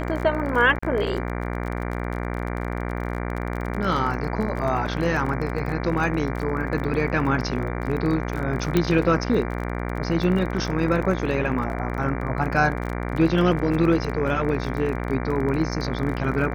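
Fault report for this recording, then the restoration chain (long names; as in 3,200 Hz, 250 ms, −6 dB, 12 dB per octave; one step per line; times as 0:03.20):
mains buzz 60 Hz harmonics 39 −28 dBFS
surface crackle 26 per second −29 dBFS
0:00.79–0:00.82: drop-out 35 ms
0:08.77: click −7 dBFS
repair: click removal
hum removal 60 Hz, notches 39
repair the gap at 0:00.79, 35 ms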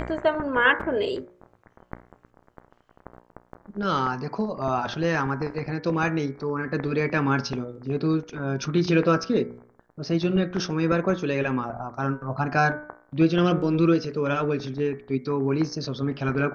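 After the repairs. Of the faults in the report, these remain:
none of them is left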